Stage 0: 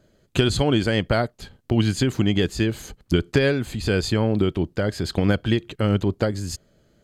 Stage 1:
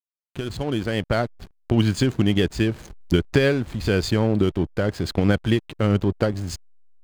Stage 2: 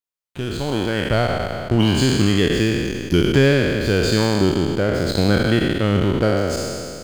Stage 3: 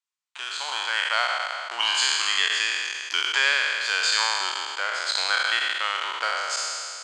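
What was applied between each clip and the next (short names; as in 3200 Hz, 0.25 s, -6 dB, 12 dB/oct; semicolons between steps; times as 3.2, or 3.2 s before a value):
opening faded in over 1.42 s; backlash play -31 dBFS; gain +1 dB
spectral trails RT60 2.38 s
elliptic band-pass 970–8000 Hz, stop band 70 dB; gain +3.5 dB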